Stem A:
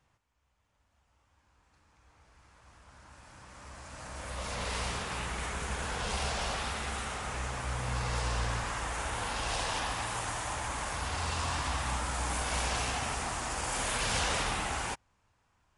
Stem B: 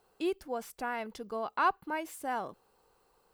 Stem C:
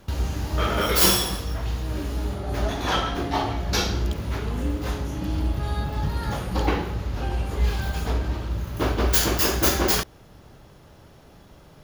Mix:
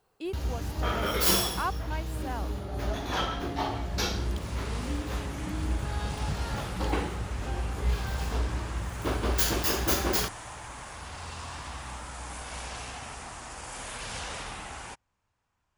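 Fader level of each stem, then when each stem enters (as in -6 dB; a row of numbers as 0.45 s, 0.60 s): -6.5 dB, -3.5 dB, -6.0 dB; 0.00 s, 0.00 s, 0.25 s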